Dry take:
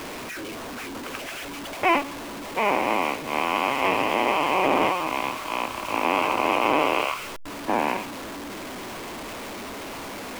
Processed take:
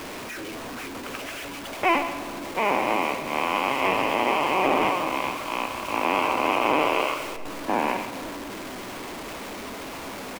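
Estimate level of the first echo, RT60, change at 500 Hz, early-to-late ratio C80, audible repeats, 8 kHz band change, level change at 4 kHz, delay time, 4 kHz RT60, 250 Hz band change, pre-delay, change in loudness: -13.5 dB, 3.0 s, -0.5 dB, 10.0 dB, 1, -0.5 dB, -0.5 dB, 0.132 s, 1.4 s, -0.5 dB, 11 ms, -0.5 dB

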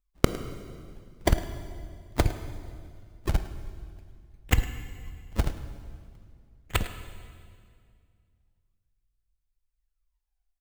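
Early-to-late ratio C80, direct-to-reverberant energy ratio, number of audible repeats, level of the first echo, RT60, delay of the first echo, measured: 11.0 dB, 9.5 dB, 1, -17.5 dB, 2.2 s, 0.106 s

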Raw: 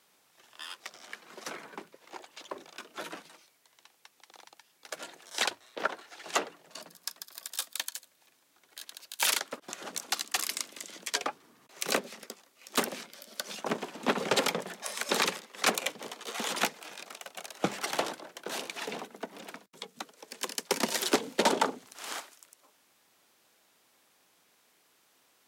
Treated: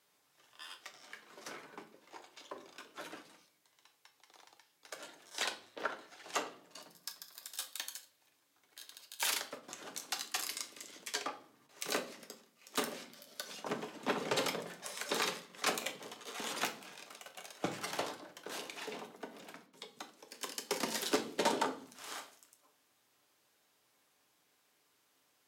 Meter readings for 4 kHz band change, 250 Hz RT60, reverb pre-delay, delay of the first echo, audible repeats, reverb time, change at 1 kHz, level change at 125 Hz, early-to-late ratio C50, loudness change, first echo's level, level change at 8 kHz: -6.5 dB, 0.85 s, 7 ms, none, none, 0.50 s, -6.5 dB, -6.0 dB, 13.5 dB, -6.5 dB, none, -6.5 dB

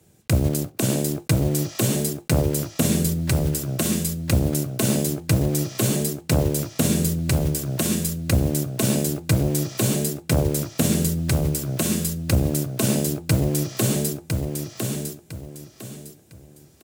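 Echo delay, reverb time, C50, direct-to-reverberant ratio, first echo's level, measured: 1.005 s, none, none, none, -4.5 dB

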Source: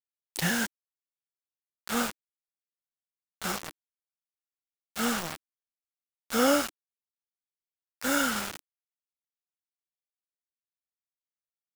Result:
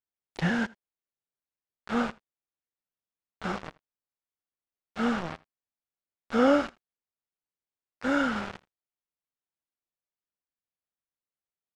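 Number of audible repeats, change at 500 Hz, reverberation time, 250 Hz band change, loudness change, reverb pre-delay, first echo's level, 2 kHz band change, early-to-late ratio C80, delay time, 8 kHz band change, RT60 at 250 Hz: 1, +2.5 dB, none, +3.5 dB, +0.5 dB, none, -23.5 dB, -1.0 dB, none, 81 ms, -18.0 dB, none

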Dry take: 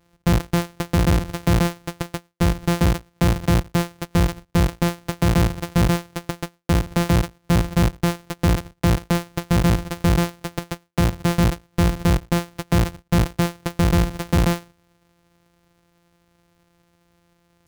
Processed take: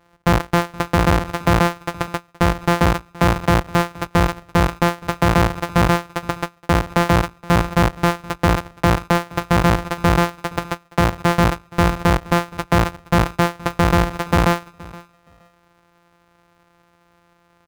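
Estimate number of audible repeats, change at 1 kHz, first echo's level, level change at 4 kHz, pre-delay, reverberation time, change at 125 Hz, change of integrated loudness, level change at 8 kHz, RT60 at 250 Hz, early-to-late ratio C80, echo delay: 1, +9.5 dB, -21.5 dB, +3.0 dB, none, none, 0.0 dB, +2.5 dB, 0.0 dB, none, none, 0.471 s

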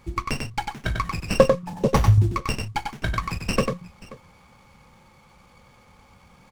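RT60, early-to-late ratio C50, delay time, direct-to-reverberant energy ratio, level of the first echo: none, none, 96 ms, none, -4.5 dB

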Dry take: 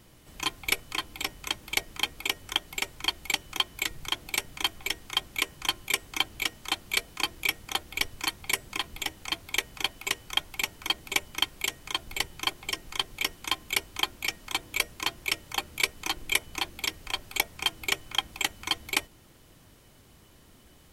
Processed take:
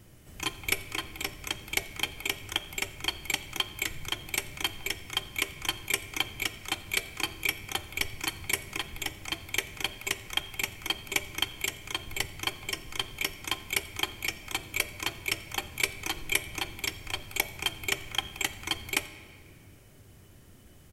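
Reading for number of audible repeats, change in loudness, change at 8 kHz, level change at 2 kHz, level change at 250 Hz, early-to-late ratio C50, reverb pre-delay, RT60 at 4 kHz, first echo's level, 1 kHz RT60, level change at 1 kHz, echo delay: 1, -2.0 dB, -0.5 dB, -1.0 dB, +1.0 dB, 13.0 dB, 3 ms, 1.5 s, -23.0 dB, 2.1 s, -3.5 dB, 87 ms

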